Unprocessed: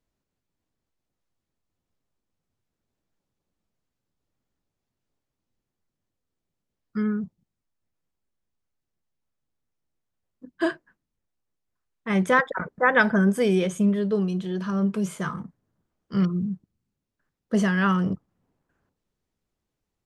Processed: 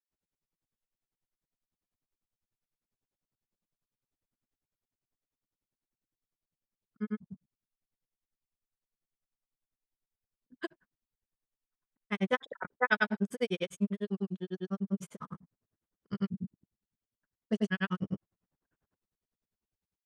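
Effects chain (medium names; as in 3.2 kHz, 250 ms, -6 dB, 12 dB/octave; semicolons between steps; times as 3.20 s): granulator 72 ms, grains 10 per s, pitch spread up and down by 0 st; dynamic bell 3.1 kHz, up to +6 dB, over -47 dBFS, Q 1.2; trim -6 dB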